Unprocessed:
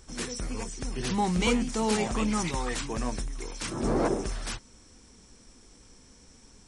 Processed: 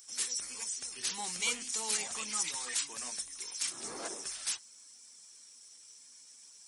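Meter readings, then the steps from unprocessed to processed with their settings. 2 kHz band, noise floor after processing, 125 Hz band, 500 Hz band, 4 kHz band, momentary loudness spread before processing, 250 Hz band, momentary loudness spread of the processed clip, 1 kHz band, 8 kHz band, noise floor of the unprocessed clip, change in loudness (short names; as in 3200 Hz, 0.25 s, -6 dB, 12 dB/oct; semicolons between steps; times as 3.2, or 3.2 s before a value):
-5.0 dB, -56 dBFS, under -25 dB, -18.5 dB, 0.0 dB, 10 LU, -24.0 dB, 20 LU, -13.0 dB, +4.5 dB, -56 dBFS, -5.0 dB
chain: bin magnitudes rounded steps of 15 dB; differentiator; gain +5.5 dB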